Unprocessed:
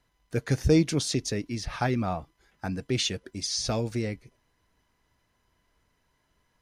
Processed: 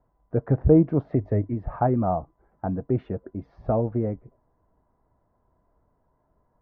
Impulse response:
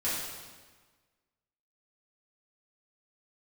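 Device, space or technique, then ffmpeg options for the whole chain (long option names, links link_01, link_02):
under water: -filter_complex "[0:a]lowpass=frequency=1100:width=0.5412,lowpass=frequency=1100:width=1.3066,equalizer=frequency=650:width_type=o:width=0.47:gain=5,asettb=1/sr,asplit=3[link_01][link_02][link_03];[link_01]atrim=end=1.044[link_04];[link_02]atrim=start=1.04:end=1.54,asetpts=PTS-STARTPTS,afade=type=in:duration=0.004:curve=qsin,afade=type=out:start_time=0.496:duration=0.004:curve=qsin,equalizer=frequency=100:width_type=o:width=0.33:gain=10,equalizer=frequency=630:width_type=o:width=0.33:gain=5,equalizer=frequency=2000:width_type=o:width=0.33:gain=9[link_05];[link_03]atrim=start=1.536[link_06];[link_04][link_05]acrossfade=duration=0.004:curve1=hsin:curve2=qsin[link_07];[link_07][link_06]acrossfade=duration=0.004:curve1=qsin:curve2=hsin,volume=4dB"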